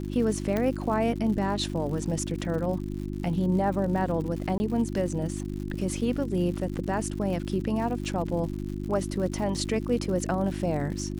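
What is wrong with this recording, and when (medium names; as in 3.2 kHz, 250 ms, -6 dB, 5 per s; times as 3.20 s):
crackle 130 per s -36 dBFS
hum 50 Hz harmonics 7 -33 dBFS
0.57 s: pop -15 dBFS
4.58–4.60 s: dropout 20 ms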